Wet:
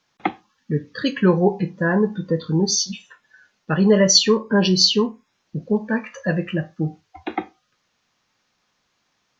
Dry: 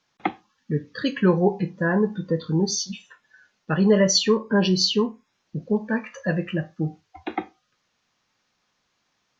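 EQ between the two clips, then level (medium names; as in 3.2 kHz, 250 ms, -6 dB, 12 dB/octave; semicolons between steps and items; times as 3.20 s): dynamic bell 5.1 kHz, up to +4 dB, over -34 dBFS, Q 0.95; +2.5 dB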